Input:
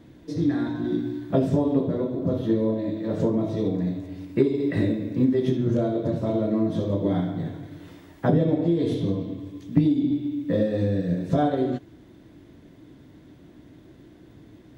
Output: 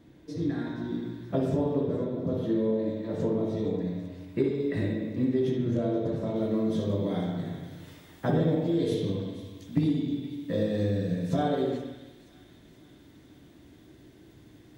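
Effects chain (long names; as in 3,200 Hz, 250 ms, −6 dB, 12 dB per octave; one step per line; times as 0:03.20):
high-shelf EQ 3,200 Hz +2.5 dB, from 0:06.36 +11 dB
delay with a high-pass on its return 475 ms, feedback 57%, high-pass 2,000 Hz, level −14.5 dB
convolution reverb RT60 1.0 s, pre-delay 56 ms, DRR 2 dB
level −6.5 dB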